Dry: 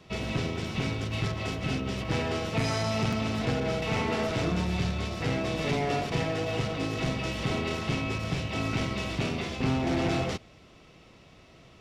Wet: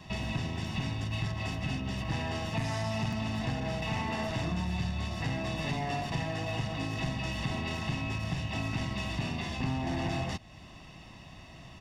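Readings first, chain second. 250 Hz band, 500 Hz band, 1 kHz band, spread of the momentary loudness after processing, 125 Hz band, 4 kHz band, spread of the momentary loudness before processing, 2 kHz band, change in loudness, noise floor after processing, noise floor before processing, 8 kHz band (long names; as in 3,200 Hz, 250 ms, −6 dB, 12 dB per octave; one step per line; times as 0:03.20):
−4.5 dB, −8.0 dB, −3.0 dB, 8 LU, −2.0 dB, −3.5 dB, 3 LU, −3.5 dB, −4.0 dB, −50 dBFS, −55 dBFS, −4.5 dB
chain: notch filter 4,000 Hz, Q 21
comb filter 1.1 ms, depth 67%
downward compressor 2 to 1, threshold −40 dBFS, peak gain reduction 11 dB
level +3 dB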